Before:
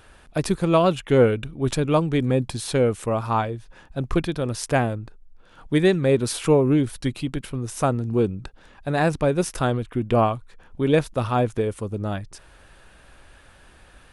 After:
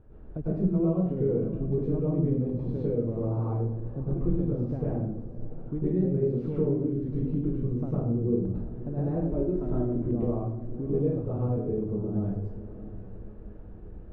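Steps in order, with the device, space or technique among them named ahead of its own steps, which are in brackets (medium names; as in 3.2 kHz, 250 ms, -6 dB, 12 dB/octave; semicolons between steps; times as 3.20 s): 9.11–9.97 s: comb 3.1 ms; television next door (compression 4:1, threshold -31 dBFS, peak gain reduction 16.5 dB; low-pass 330 Hz 12 dB/octave; reverberation RT60 0.70 s, pre-delay 97 ms, DRR -8 dB); peaking EQ 4.3 kHz +4 dB 2.5 oct; echo that smears into a reverb 626 ms, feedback 47%, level -14.5 dB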